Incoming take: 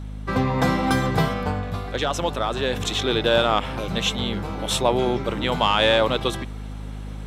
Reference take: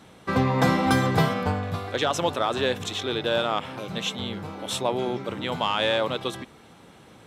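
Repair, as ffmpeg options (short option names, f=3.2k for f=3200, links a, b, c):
-af "bandreject=f=51.5:t=h:w=4,bandreject=f=103:t=h:w=4,bandreject=f=154.5:t=h:w=4,bandreject=f=206:t=h:w=4,bandreject=f=257.5:t=h:w=4,asetnsamples=n=441:p=0,asendcmd='2.73 volume volume -5.5dB',volume=0dB"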